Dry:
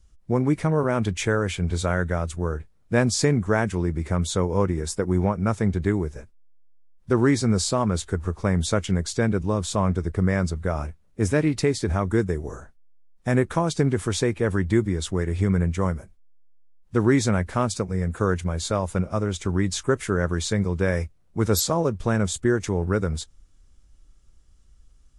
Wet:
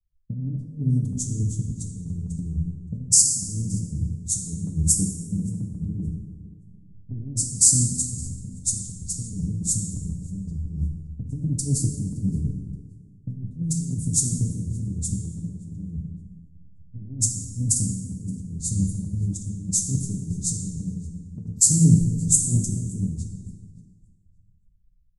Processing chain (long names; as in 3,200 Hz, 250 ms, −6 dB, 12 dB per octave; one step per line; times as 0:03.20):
inverse Chebyshev band-stop filter 680–2,400 Hz, stop band 70 dB
compressor whose output falls as the input rises −29 dBFS, ratio −0.5
low-shelf EQ 99 Hz −8.5 dB
comb filter 6.9 ms, depth 36%
low-pass that shuts in the quiet parts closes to 780 Hz, open at −27 dBFS
delay that swaps between a low-pass and a high-pass 286 ms, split 860 Hz, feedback 60%, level −11 dB
dense smooth reverb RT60 3.5 s, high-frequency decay 0.6×, DRR 0.5 dB
multiband upward and downward expander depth 100%
level +3.5 dB